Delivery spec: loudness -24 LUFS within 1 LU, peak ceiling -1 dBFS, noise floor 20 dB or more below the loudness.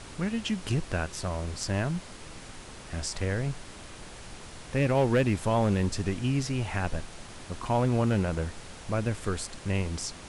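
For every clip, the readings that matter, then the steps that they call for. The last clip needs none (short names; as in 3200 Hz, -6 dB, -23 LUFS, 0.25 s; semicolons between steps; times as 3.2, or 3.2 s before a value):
clipped 0.3%; flat tops at -17.0 dBFS; noise floor -45 dBFS; noise floor target -50 dBFS; loudness -29.5 LUFS; peak -17.0 dBFS; loudness target -24.0 LUFS
-> clip repair -17 dBFS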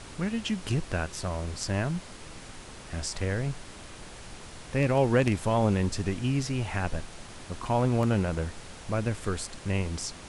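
clipped 0.0%; noise floor -45 dBFS; noise floor target -50 dBFS
-> noise print and reduce 6 dB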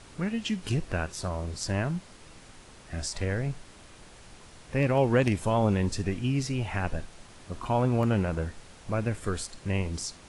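noise floor -51 dBFS; loudness -29.5 LUFS; peak -9.0 dBFS; loudness target -24.0 LUFS
-> gain +5.5 dB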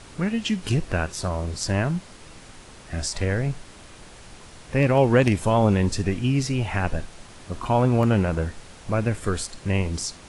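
loudness -24.0 LUFS; peak -3.5 dBFS; noise floor -46 dBFS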